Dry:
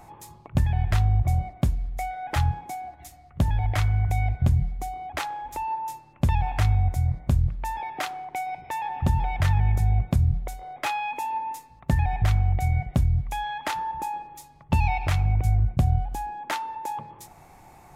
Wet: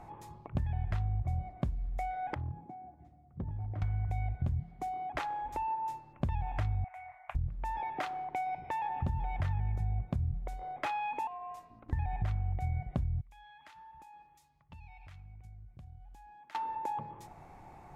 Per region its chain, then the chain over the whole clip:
2.34–3.82 compressor 2:1, threshold -30 dBFS + band-pass 190 Hz, Q 0.9 + overloaded stage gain 30 dB
4.6–5.16 HPF 140 Hz + notch 530 Hz, Q 11
6.84–7.35 elliptic high-pass 700 Hz + resonant high shelf 3300 Hz -11.5 dB, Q 3
11.27–11.93 compressor 10:1, threshold -35 dBFS + ring modulator 170 Hz
13.21–16.55 passive tone stack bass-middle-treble 5-5-5 + compressor 4:1, threshold -48 dBFS
whole clip: LPF 1700 Hz 6 dB/oct; compressor 3:1, threshold -31 dBFS; gain -1.5 dB

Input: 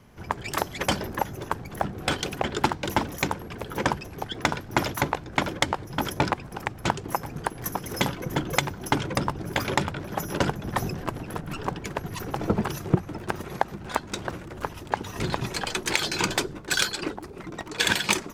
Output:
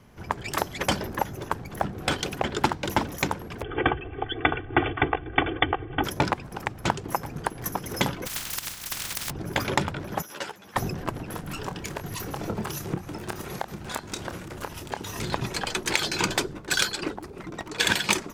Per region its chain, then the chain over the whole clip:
3.62–6.04 brick-wall FIR low-pass 3500 Hz + bell 950 Hz -8.5 dB 0.2 oct + comb 2.6 ms, depth 95%
8.25–9.29 spectral contrast lowered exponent 0.2 + compressor 10:1, threshold -25 dBFS + bell 440 Hz -11 dB 2.2 oct
10.22–10.76 HPF 1400 Hz 6 dB/oct + ensemble effect
11.31–15.31 high shelf 3700 Hz +8 dB + compressor 2:1, threshold -31 dBFS + doubler 28 ms -9 dB
whole clip: dry

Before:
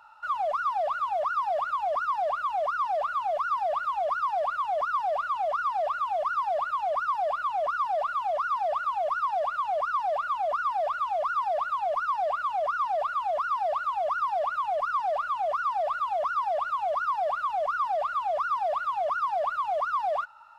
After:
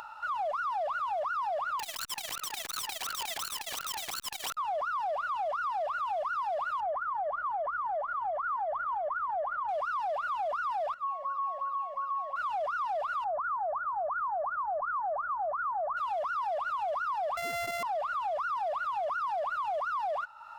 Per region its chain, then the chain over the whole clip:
1.79–4.57 HPF 54 Hz + wrapped overs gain 28.5 dB + core saturation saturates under 970 Hz
6.8–9.69 compressor, threshold -28 dBFS + phaser 2 Hz, delay 4 ms, feedback 28% + polynomial smoothing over 41 samples
10.94–12.36 resonator 550 Hz, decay 0.53 s, mix 90% + de-hum 225.9 Hz, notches 7 + small resonant body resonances 200/440/1100/1900 Hz, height 15 dB
13.24–15.97 steep low-pass 1500 Hz 48 dB/oct + bell 460 Hz -11 dB 0.48 oct
17.37–17.83 sample sorter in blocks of 64 samples + bell 2000 Hz +9.5 dB 0.36 oct
whole clip: limiter -27.5 dBFS; upward compressor, threshold -37 dBFS

